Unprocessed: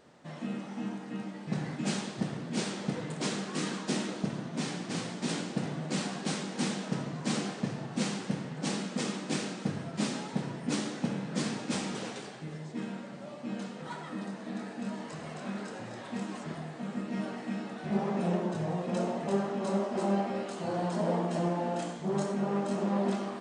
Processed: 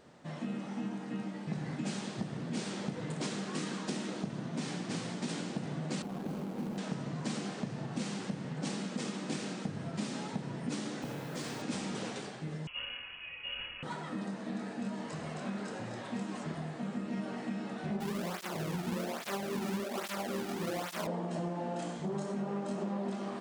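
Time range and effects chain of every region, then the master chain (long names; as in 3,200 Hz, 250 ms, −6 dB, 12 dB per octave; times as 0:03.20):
0:06.02–0:06.78: running median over 25 samples + downward compressor 2.5 to 1, threshold −34 dBFS
0:11.02–0:11.62: parametric band 200 Hz −14.5 dB 0.39 octaves + downward compressor 3 to 1, threshold −36 dBFS + bit-depth reduction 10 bits, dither triangular
0:12.67–0:13.83: high-pass filter 300 Hz 6 dB per octave + voice inversion scrambler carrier 3,100 Hz
0:18.00–0:21.07: each half-wave held at its own peak + through-zero flanger with one copy inverted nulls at 1.2 Hz, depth 2 ms
whole clip: low-shelf EQ 140 Hz +4.5 dB; downward compressor, threshold −33 dBFS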